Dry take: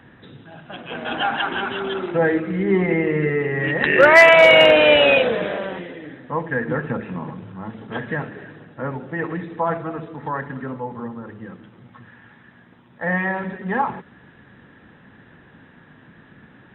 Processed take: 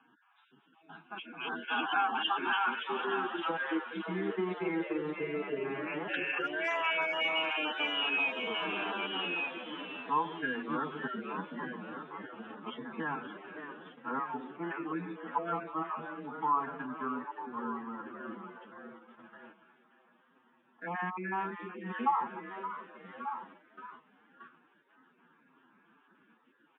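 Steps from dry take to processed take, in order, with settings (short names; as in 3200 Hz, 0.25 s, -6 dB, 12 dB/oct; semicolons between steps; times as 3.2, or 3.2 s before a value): random spectral dropouts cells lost 27%; wow and flutter 26 cents; echo 0.742 s -14 dB; compressor 8:1, threshold -21 dBFS, peak gain reduction 15 dB; three-band isolator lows -21 dB, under 250 Hz, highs -13 dB, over 3300 Hz; fixed phaser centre 2800 Hz, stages 8; frequency-shifting echo 0.355 s, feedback 49%, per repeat +140 Hz, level -11 dB; time stretch by phase-locked vocoder 1.6×; gate -51 dBFS, range -9 dB; HPF 160 Hz 24 dB/oct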